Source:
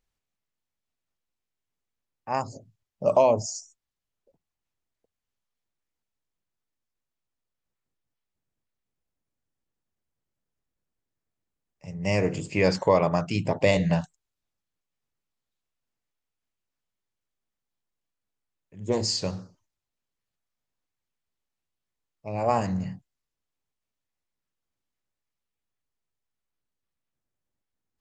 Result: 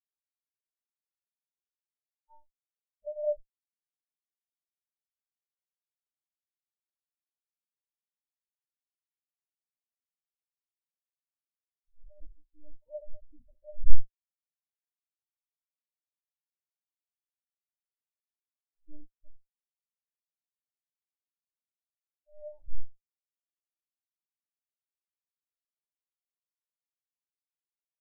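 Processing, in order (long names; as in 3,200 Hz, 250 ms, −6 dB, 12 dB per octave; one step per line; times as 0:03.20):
brickwall limiter −19.5 dBFS, peak gain reduction 11.5 dB
reverb whose tail is shaped and stops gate 90 ms flat, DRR 4.5 dB
one-pitch LPC vocoder at 8 kHz 300 Hz
high-frequency loss of the air 350 metres
every bin expanded away from the loudest bin 4 to 1
level +14.5 dB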